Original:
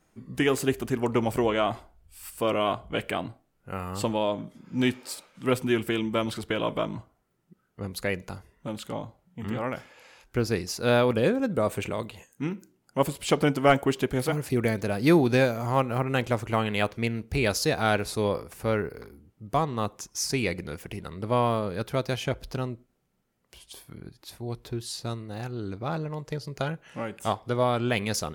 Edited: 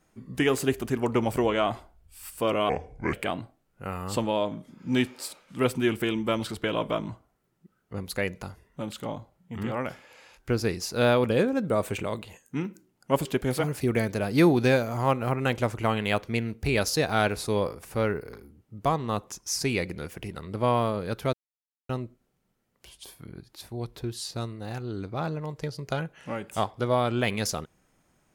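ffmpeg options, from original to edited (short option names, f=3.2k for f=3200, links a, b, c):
-filter_complex "[0:a]asplit=6[a][b][c][d][e][f];[a]atrim=end=2.694[g];[b]atrim=start=2.69:end=3,asetpts=PTS-STARTPTS,asetrate=30870,aresample=44100[h];[c]atrim=start=2.996:end=13.122[i];[d]atrim=start=13.938:end=22.02,asetpts=PTS-STARTPTS,afade=t=out:st=8.078:d=0.004:c=hsin[j];[e]atrim=start=22.02:end=22.58,asetpts=PTS-STARTPTS,volume=0[k];[f]atrim=start=22.58,asetpts=PTS-STARTPTS,afade=t=in:d=0.004:c=hsin[l];[g][h]acrossfade=d=0.004:c1=hsin:c2=hsin[m];[m][i]acrossfade=d=0.004:c1=hsin:c2=hsin[n];[j][k][l]concat=n=3:v=0:a=1[o];[n][o]acrossfade=d=0.004:c1=hsin:c2=hsin"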